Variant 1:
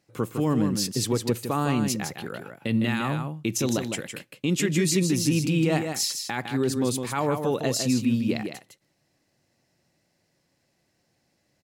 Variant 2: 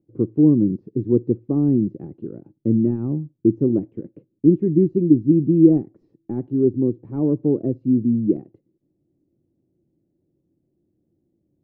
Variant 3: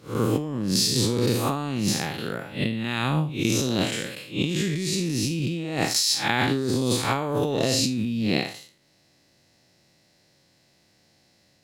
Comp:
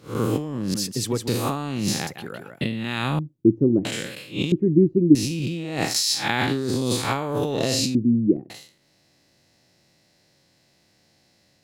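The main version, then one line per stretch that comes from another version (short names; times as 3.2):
3
0.74–1.28 from 1
2.07–2.61 from 1
3.19–3.85 from 2
4.52–5.15 from 2
7.95–8.5 from 2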